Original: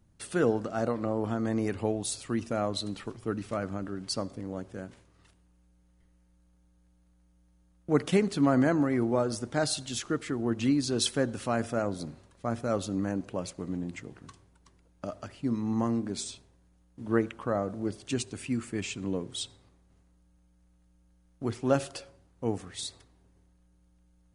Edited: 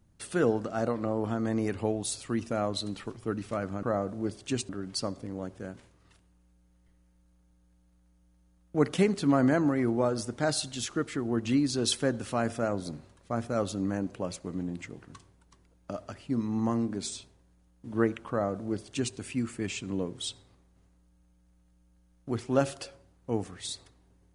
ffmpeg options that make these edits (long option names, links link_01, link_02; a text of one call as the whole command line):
ffmpeg -i in.wav -filter_complex "[0:a]asplit=3[link_01][link_02][link_03];[link_01]atrim=end=3.832[link_04];[link_02]atrim=start=17.438:end=18.302[link_05];[link_03]atrim=start=3.828[link_06];[link_04][link_05]acrossfade=duration=0.004:curve1=hsin:curve2=hsin[link_07];[link_07][link_06]acrossfade=duration=0.004:curve1=hsin:curve2=hsin" out.wav